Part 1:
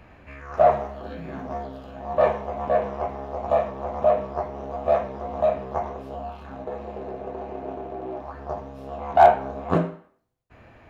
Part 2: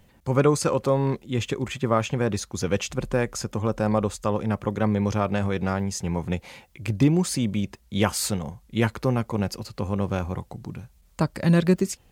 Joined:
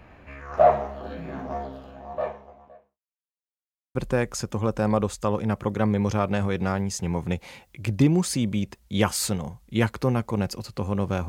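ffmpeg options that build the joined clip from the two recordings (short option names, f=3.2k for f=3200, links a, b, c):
-filter_complex "[0:a]apad=whole_dur=11.28,atrim=end=11.28,asplit=2[a][b];[a]atrim=end=3,asetpts=PTS-STARTPTS,afade=t=out:st=1.65:d=1.35:c=qua[c];[b]atrim=start=3:end=3.95,asetpts=PTS-STARTPTS,volume=0[d];[1:a]atrim=start=2.96:end=10.29,asetpts=PTS-STARTPTS,afade=t=in:d=0.004:c=hsin[e];[c][d][e]concat=n=3:v=0:a=1"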